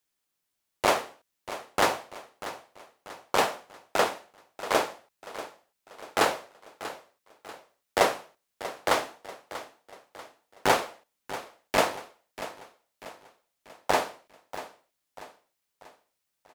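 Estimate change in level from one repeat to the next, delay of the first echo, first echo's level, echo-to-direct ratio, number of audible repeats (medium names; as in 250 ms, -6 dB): -7.0 dB, 639 ms, -14.0 dB, -13.0 dB, 4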